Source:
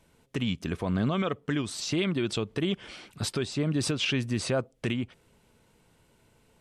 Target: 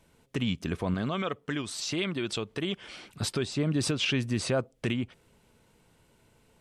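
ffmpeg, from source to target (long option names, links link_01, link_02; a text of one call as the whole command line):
ffmpeg -i in.wav -filter_complex "[0:a]asettb=1/sr,asplit=3[link_01][link_02][link_03];[link_01]atrim=end=0.944[link_04];[link_02]atrim=start=0.94:end=2.94,asetpts=PTS-STARTPTS,afade=type=in:duration=0.004:curve=qsin,afade=type=out:start_time=1.996:duration=0.004:curve=qsin,lowshelf=frequency=420:gain=-6[link_05];[link_03]atrim=start=2.936[link_06];[link_04][link_05]acrossfade=duration=0.004:curve1=hsin:curve2=qsin[link_07];[link_07][link_06]acrossfade=duration=0.004:curve1=qsin:curve2=hsin" out.wav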